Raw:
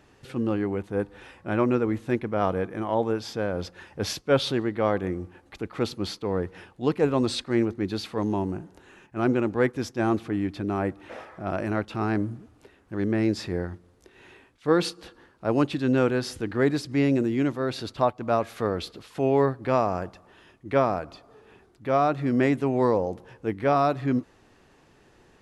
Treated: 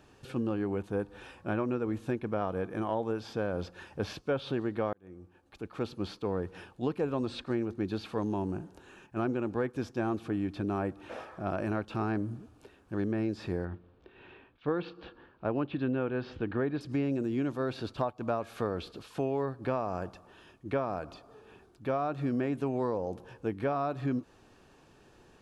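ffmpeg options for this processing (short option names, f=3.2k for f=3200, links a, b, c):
-filter_complex "[0:a]asettb=1/sr,asplit=3[a][b][c];[a]atrim=end=13.654[d];[b]atrim=start=13.65:end=16.81,asetpts=PTS-STARTPTS,afade=t=in:d=0.004:c=qsin,afade=t=out:st=3.156:d=0.004:c=qsin,lowpass=f=3.4k:w=0.5412,lowpass=f=3.4k:w=1.3066[e];[c]atrim=start=16.806[f];[d][e]acrossfade=d=0.004:c1=hsin:c2=qsin[g];[g][f]acrossfade=d=0.004:c1=qsin:c2=hsin,asplit=2[h][i];[h]atrim=end=4.93,asetpts=PTS-STARTPTS,afade=t=out:st=4.926:d=0.004:c=hsin[j];[i]atrim=start=4.93,asetpts=PTS-STARTPTS,afade=t=in:d=1.41[k];[j][k]concat=n=2:v=0:a=1,acrossover=split=3100[l][m];[m]acompressor=threshold=-50dB:ratio=4:attack=1:release=60[n];[l][n]amix=inputs=2:normalize=0,bandreject=f=2k:w=6.2,acompressor=threshold=-26dB:ratio=6,volume=-1.5dB"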